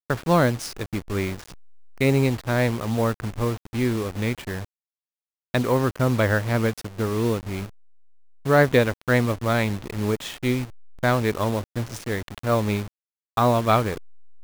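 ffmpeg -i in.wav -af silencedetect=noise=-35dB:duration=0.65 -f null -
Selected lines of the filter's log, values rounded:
silence_start: 4.65
silence_end: 5.54 | silence_duration: 0.89
silence_start: 7.66
silence_end: 8.46 | silence_duration: 0.80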